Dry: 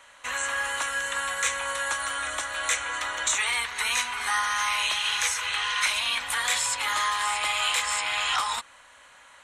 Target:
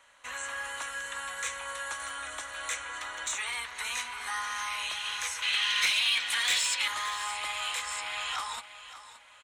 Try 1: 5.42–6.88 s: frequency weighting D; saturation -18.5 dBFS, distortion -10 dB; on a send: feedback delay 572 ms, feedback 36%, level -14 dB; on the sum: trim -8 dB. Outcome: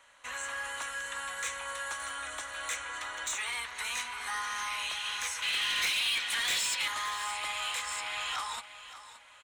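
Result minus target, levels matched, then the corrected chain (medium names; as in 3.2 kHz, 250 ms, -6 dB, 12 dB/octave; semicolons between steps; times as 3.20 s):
saturation: distortion +7 dB
5.42–6.88 s: frequency weighting D; saturation -11.5 dBFS, distortion -17 dB; on a send: feedback delay 572 ms, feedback 36%, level -14 dB; on the sum: trim -8 dB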